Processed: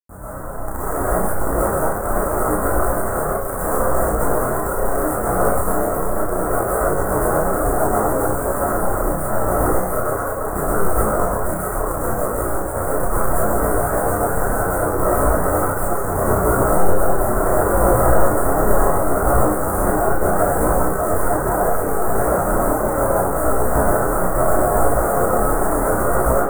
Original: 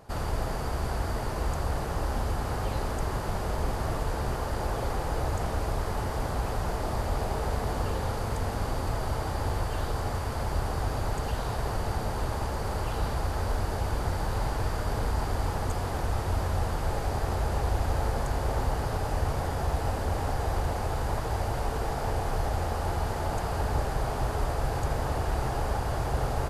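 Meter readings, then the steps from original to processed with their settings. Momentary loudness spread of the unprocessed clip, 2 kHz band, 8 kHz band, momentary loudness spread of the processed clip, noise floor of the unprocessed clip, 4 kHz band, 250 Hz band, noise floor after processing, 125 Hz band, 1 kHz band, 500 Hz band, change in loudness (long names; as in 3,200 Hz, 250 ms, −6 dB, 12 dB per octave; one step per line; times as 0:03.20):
2 LU, +11.0 dB, +16.0 dB, 5 LU, −32 dBFS, below −15 dB, +14.0 dB, −23 dBFS, +4.5 dB, +12.5 dB, +16.0 dB, +12.0 dB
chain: high-pass filter 42 Hz 12 dB per octave
automatic gain control gain up to 11 dB
log-companded quantiser 2 bits
elliptic band-stop filter 1,400–8,600 Hz, stop band 80 dB
reverb reduction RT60 0.62 s
dynamic equaliser 410 Hz, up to +6 dB, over −30 dBFS, Q 1.6
brickwall limiter −0.5 dBFS, peak gain reduction 6 dB
on a send: flutter between parallel walls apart 5.6 metres, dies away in 0.46 s
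on the sum: comb and all-pass reverb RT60 0.5 s, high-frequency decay 0.55×, pre-delay 90 ms, DRR −7.5 dB
micro pitch shift up and down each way 25 cents
level −6.5 dB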